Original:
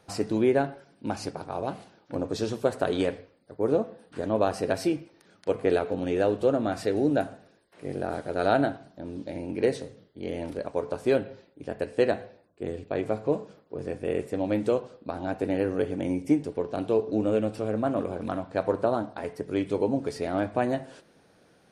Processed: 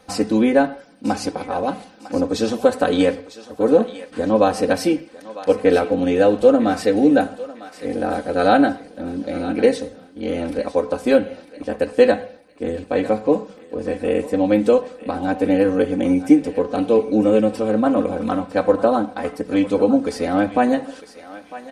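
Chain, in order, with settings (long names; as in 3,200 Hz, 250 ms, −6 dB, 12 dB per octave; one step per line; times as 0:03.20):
comb filter 3.9 ms, depth 92%
feedback echo with a high-pass in the loop 952 ms, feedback 34%, high-pass 770 Hz, level −13 dB
level +6.5 dB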